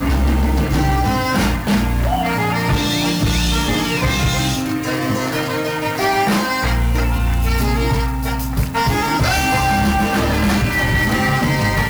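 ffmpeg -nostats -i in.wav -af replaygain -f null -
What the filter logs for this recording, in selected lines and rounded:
track_gain = +0.6 dB
track_peak = 0.236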